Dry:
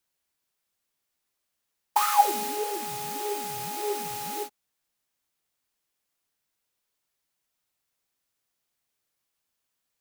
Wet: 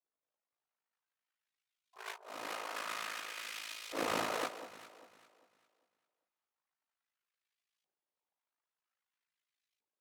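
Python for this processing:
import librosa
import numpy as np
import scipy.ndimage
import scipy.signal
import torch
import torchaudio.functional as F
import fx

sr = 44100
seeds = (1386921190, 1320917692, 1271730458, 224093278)

p1 = fx.spec_gate(x, sr, threshold_db=-15, keep='weak')
p2 = fx.filter_lfo_bandpass(p1, sr, shape='saw_up', hz=0.51, low_hz=500.0, high_hz=3300.0, q=1.1)
p3 = fx.over_compress(p2, sr, threshold_db=-52.0, ratio=-0.5)
p4 = p3 * np.sin(2.0 * np.pi * 27.0 * np.arange(len(p3)) / sr)
p5 = p4 + fx.echo_alternate(p4, sr, ms=199, hz=1100.0, feedback_pct=54, wet_db=-9.5, dry=0)
y = p5 * 10.0 ** (14.5 / 20.0)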